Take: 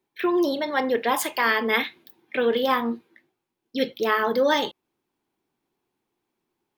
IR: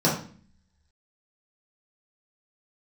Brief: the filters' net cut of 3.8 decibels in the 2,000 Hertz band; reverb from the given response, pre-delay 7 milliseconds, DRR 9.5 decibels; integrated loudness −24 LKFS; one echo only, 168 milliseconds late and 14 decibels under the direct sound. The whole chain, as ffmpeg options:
-filter_complex "[0:a]equalizer=frequency=2000:width_type=o:gain=-4.5,aecho=1:1:168:0.2,asplit=2[link_01][link_02];[1:a]atrim=start_sample=2205,adelay=7[link_03];[link_02][link_03]afir=irnorm=-1:irlink=0,volume=-25dB[link_04];[link_01][link_04]amix=inputs=2:normalize=0,volume=-0.5dB"

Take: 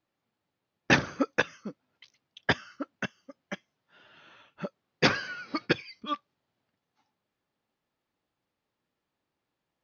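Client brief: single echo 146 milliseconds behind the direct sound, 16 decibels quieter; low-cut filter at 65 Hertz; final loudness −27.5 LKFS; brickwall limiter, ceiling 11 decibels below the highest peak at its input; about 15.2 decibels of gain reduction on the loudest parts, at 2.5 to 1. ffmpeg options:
ffmpeg -i in.wav -af "highpass=65,acompressor=threshold=-41dB:ratio=2.5,alimiter=level_in=9dB:limit=-24dB:level=0:latency=1,volume=-9dB,aecho=1:1:146:0.158,volume=21dB" out.wav

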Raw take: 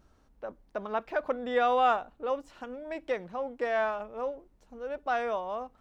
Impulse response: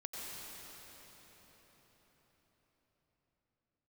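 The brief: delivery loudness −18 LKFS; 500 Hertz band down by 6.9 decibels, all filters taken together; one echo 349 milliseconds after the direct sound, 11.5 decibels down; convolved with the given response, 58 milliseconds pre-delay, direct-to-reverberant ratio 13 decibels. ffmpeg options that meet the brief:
-filter_complex "[0:a]equalizer=frequency=500:width_type=o:gain=-8.5,aecho=1:1:349:0.266,asplit=2[link_01][link_02];[1:a]atrim=start_sample=2205,adelay=58[link_03];[link_02][link_03]afir=irnorm=-1:irlink=0,volume=-13dB[link_04];[link_01][link_04]amix=inputs=2:normalize=0,volume=16.5dB"

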